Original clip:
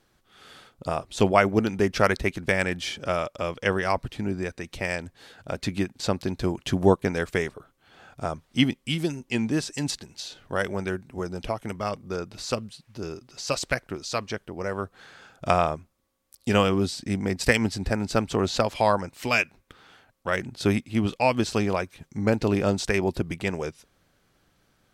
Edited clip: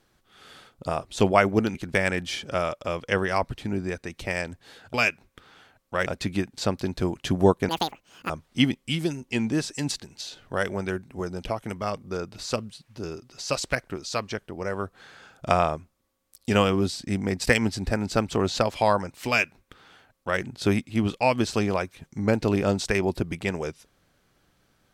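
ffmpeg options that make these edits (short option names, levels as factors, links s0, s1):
-filter_complex "[0:a]asplit=6[s0][s1][s2][s3][s4][s5];[s0]atrim=end=1.752[s6];[s1]atrim=start=2.288:end=5.482[s7];[s2]atrim=start=19.268:end=20.392[s8];[s3]atrim=start=5.478:end=7.114[s9];[s4]atrim=start=7.11:end=8.29,asetpts=PTS-STARTPTS,asetrate=85554,aresample=44100[s10];[s5]atrim=start=8.286[s11];[s6][s7]acrossfade=d=0.004:c1=hsin:c2=hsin[s12];[s12][s8]acrossfade=d=0.004:c1=hsin:c2=hsin[s13];[s13][s9]acrossfade=d=0.004:c1=hsin:c2=hsin[s14];[s14][s10]acrossfade=d=0.004:c1=hsin:c2=hsin[s15];[s15][s11]acrossfade=d=0.004:c1=hsin:c2=hsin"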